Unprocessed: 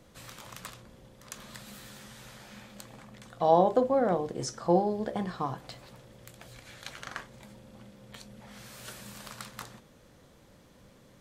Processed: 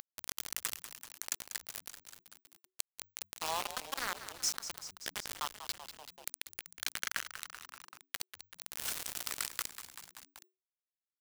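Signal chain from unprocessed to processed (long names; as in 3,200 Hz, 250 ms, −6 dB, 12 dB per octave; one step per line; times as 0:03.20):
high-pass filter 1,300 Hz 24 dB per octave
spectral tilt +2 dB per octave
notch filter 3,800 Hz, Q 15
upward compression, threshold −45 dBFS
bit-depth reduction 6 bits, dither none
on a send: echo with shifted repeats 192 ms, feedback 57%, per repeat −94 Hz, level −21.5 dB
on the sum: envelope flattener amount 50%
level −1.5 dB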